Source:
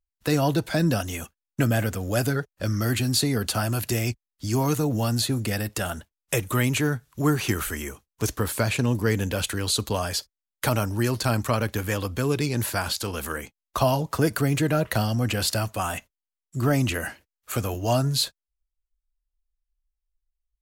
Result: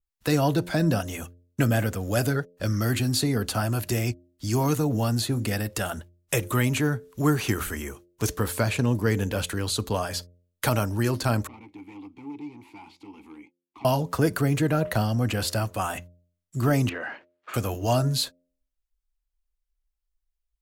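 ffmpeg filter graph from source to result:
-filter_complex "[0:a]asettb=1/sr,asplit=3[s0][s1][s2];[s0]atrim=end=11.474[s3];[s1]atrim=start=11.47:end=13.85,asetpts=PTS-STARTPTS,afade=t=in:d=0.004:c=qsin,afade=t=out:st=2.376:d=0.004:c=qsin,asoftclip=type=hard:threshold=0.0473,asplit=3[s4][s5][s6];[s4]bandpass=f=300:t=q:w=8,volume=1[s7];[s5]bandpass=f=870:t=q:w=8,volume=0.501[s8];[s6]bandpass=f=2240:t=q:w=8,volume=0.355[s9];[s7][s8][s9]amix=inputs=3:normalize=0[s10];[s2]atrim=start=13.846[s11];[s3][s10]acrossfade=d=0.004:c1=hsin:c2=qsin[s12];[s12][s11]acrossfade=d=0.004:c1=qsin:c2=hsin,asettb=1/sr,asplit=3[s13][s14][s15];[s13]atrim=end=16.894[s16];[s14]atrim=start=16.89:end=17.54,asetpts=PTS-STARTPTS,afade=t=in:d=0.004:c=qsin,afade=t=out:st=0.646:d=0.004:c=qsin,acompressor=threshold=0.0126:ratio=4:attack=3.2:release=140:knee=1:detection=peak,asplit=2[s17][s18];[s18]highpass=f=720:p=1,volume=11.2,asoftclip=type=tanh:threshold=0.133[s19];[s17][s19]amix=inputs=2:normalize=0,lowpass=f=1800:p=1,volume=0.501,highpass=190,lowpass=3100[s20];[s15]atrim=start=17.536[s21];[s16][s20]acrossfade=d=0.004:c1=hsin:c2=qsin[s22];[s22][s21]acrossfade=d=0.004:c1=qsin:c2=hsin,bandreject=f=87.62:t=h:w=4,bandreject=f=175.24:t=h:w=4,bandreject=f=262.86:t=h:w=4,bandreject=f=350.48:t=h:w=4,bandreject=f=438.1:t=h:w=4,bandreject=f=525.72:t=h:w=4,bandreject=f=613.34:t=h:w=4,adynamicequalizer=threshold=0.0112:dfrequency=1800:dqfactor=0.7:tfrequency=1800:tqfactor=0.7:attack=5:release=100:ratio=0.375:range=2.5:mode=cutabove:tftype=highshelf"

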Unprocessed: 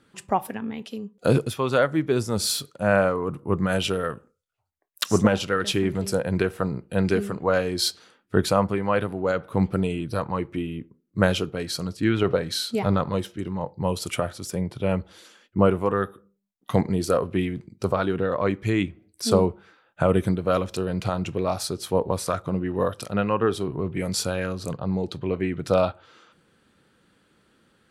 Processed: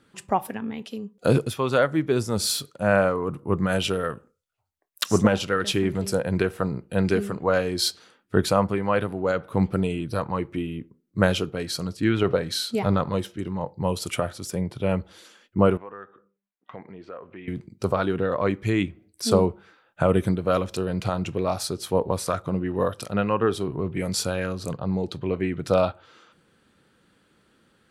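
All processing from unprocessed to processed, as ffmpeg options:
-filter_complex "[0:a]asettb=1/sr,asplit=3[s0][s1][s2];[s0]atrim=end=15.774[s3];[s1]atrim=start=15.77:end=17.48,asetpts=PTS-STARTPTS,afade=t=in:d=0.004:c=qsin,afade=t=out:st=1.706:d=0.004:c=qsin,lowpass=f=2300:w=0.5412,lowpass=f=2300:w=1.3066,aemphasis=mode=production:type=riaa,acompressor=threshold=0.00447:ratio=2:attack=3.2:release=140:knee=1:detection=peak[s4];[s2]atrim=start=17.476[s5];[s3][s4]acrossfade=d=0.004:c1=hsin:c2=qsin[s6];[s6][s5]acrossfade=d=0.004:c1=qsin:c2=hsin"

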